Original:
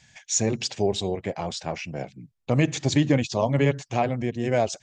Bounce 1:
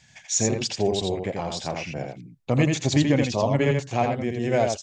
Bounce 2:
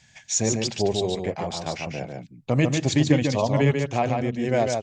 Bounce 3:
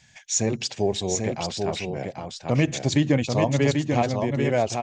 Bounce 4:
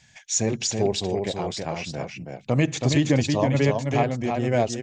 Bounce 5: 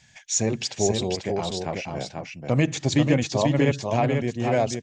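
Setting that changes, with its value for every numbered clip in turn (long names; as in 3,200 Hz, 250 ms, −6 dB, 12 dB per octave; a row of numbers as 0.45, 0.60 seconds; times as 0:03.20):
single-tap delay, delay time: 84, 145, 790, 325, 489 milliseconds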